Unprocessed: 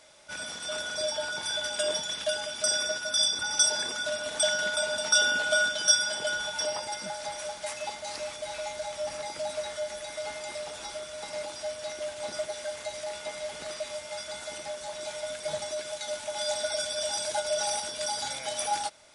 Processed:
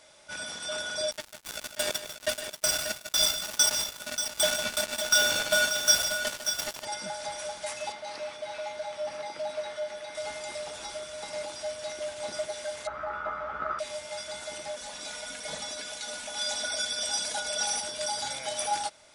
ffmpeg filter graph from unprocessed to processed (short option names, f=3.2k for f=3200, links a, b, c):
-filter_complex "[0:a]asettb=1/sr,asplit=3[a][b][c];[a]atrim=end=1.114[d];[b]atrim=start=1.11:end=6.85,asetpts=PTS-STARTPTS,afade=t=in:d=0.004:c=qsin,afade=t=out:st=5.736:d=0.004:c=qsin,acrusher=bits=3:mix=0:aa=0.5,aecho=1:1:152|585:0.282|0.376,atrim=end_sample=253134[e];[c]atrim=start=6.846[f];[d][e]acrossfade=d=0.004:c1=hsin:c2=qsin[g];[g][f]acrossfade=d=0.004:c1=qsin:c2=hsin,asettb=1/sr,asplit=3[h][i][j];[h]atrim=end=7.924[k];[i]atrim=start=7.92:end=10.15,asetpts=PTS-STARTPTS,afade=t=in:d=0.004:c=qsin,afade=t=out:st=2.226:d=0.004:c=qsin,highpass=f=210:p=1,aemphasis=mode=reproduction:type=50fm,bandreject=f=7.1k:w=7.9[l];[j]atrim=start=10.146[m];[k][l]acrossfade=d=0.004:c1=hsin:c2=qsin[n];[n][m]acrossfade=d=0.004:c1=qsin:c2=hsin,asettb=1/sr,asplit=3[o][p][q];[o]atrim=end=12.874[r];[p]atrim=start=12.87:end=13.79,asetpts=PTS-STARTPTS,afade=t=in:d=0.004:c=qsin,afade=t=out:st=0.916:d=0.004:c=qsin,aeval=exprs='val(0)+0.00112*(sin(2*PI*60*n/s)+sin(2*PI*2*60*n/s)/2+sin(2*PI*3*60*n/s)/3+sin(2*PI*4*60*n/s)/4+sin(2*PI*5*60*n/s)/5)':c=same,lowpass=f=1.3k:t=q:w=15,asplit=2[s][t];[t]adelay=14,volume=-5dB[u];[s][u]amix=inputs=2:normalize=0,atrim=end_sample=40572[v];[q]atrim=start=13.786[w];[r][v]acrossfade=d=0.004:c1=hsin:c2=qsin[x];[x][w]acrossfade=d=0.004:c1=qsin:c2=hsin,asettb=1/sr,asplit=3[y][z][aa];[y]atrim=end=14.764[ab];[z]atrim=start=14.76:end=17.81,asetpts=PTS-STARTPTS,afade=t=in:d=0.004:c=qsin,afade=t=out:st=3.046:d=0.004:c=qsin,aecho=1:1:4.1:0.69,atrim=end_sample=134505,bandreject=f=47.41:t=h:w=4,bandreject=f=94.82:t=h:w=4,bandreject=f=142.23:t=h:w=4,bandreject=f=189.64:t=h:w=4,bandreject=f=237.05:t=h:w=4,bandreject=f=284.46:t=h:w=4,bandreject=f=331.87:t=h:w=4,bandreject=f=379.28:t=h:w=4,bandreject=f=426.69:t=h:w=4,bandreject=f=474.1:t=h:w=4,bandreject=f=521.51:t=h:w=4,bandreject=f=568.92:t=h:w=4,bandreject=f=616.33:t=h:w=4,bandreject=f=663.74:t=h:w=4,bandreject=f=711.15:t=h:w=4,bandreject=f=758.56:t=h:w=4,bandreject=f=805.97:t=h:w=4,bandreject=f=853.38:t=h:w=4,bandreject=f=900.79:t=h:w=4,bandreject=f=948.2:t=h:w=4,bandreject=f=995.61:t=h:w=4,bandreject=f=1.04302k:t=h:w=4,bandreject=f=1.09043k:t=h:w=4,bandreject=f=1.13784k:t=h:w=4,bandreject=f=1.18525k:t=h:w=4,bandreject=f=1.23266k:t=h:w=4,bandreject=f=1.28007k:t=h:w=4,bandreject=f=1.32748k:t=h:w=4,bandreject=f=1.37489k:t=h:w=4,bandreject=f=1.4223k:t=h:w=4,bandreject=f=1.46971k:t=h:w=4,bandreject=f=1.51712k:t=h:w=4,bandreject=f=1.56453k:t=h:w=4,bandreject=f=1.61194k:t=h:w=4[ac];[aa]atrim=start=17.806[ad];[ab][ac]acrossfade=d=0.004:c1=hsin:c2=qsin[ae];[ae][ad]acrossfade=d=0.004:c1=qsin:c2=hsin"